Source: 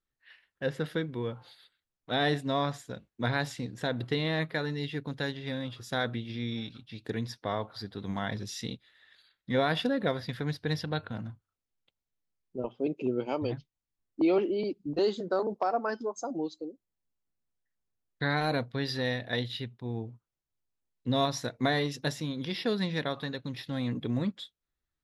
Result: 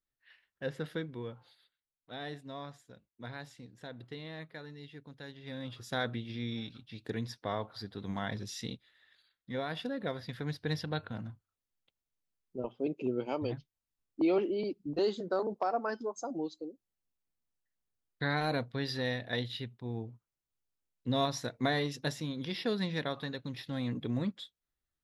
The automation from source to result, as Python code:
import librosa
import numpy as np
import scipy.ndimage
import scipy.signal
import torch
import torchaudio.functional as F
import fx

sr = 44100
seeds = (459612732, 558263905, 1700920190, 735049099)

y = fx.gain(x, sr, db=fx.line((1.02, -5.5), (2.14, -14.5), (5.23, -14.5), (5.73, -3.0), (8.74, -3.0), (9.65, -10.0), (10.65, -3.0)))